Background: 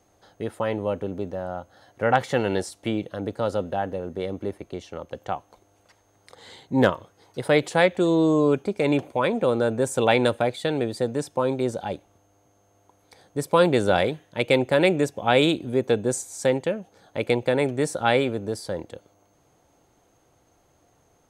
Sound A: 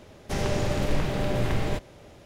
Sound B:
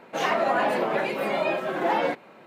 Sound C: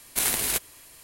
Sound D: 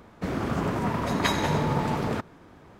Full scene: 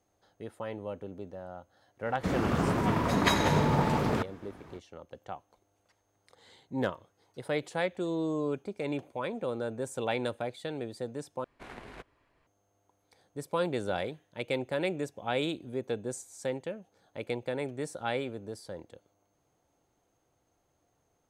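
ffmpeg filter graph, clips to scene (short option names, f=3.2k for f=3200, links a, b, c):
-filter_complex "[0:a]volume=-12dB[a];[3:a]lowpass=1.5k[b];[a]asplit=2[c][d];[c]atrim=end=11.444[e];[b]atrim=end=1.03,asetpts=PTS-STARTPTS,volume=-10.5dB[f];[d]atrim=start=12.466[g];[4:a]atrim=end=2.79,asetpts=PTS-STARTPTS,volume=-0.5dB,afade=t=in:d=0.05,afade=t=out:st=2.74:d=0.05,adelay=2020[h];[e][f]acrossfade=d=0.004:c1=hsin:c2=hsin[i];[i][g]acrossfade=d=0.004:c1=hsin:c2=hsin[j];[j][h]amix=inputs=2:normalize=0"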